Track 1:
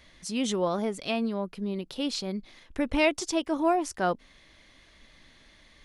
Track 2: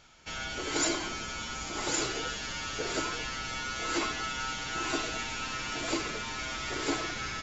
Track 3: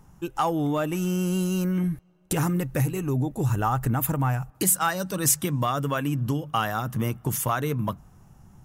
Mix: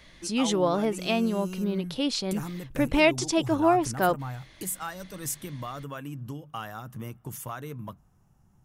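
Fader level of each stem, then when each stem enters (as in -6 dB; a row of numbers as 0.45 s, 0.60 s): +3.0 dB, mute, -11.5 dB; 0.00 s, mute, 0.00 s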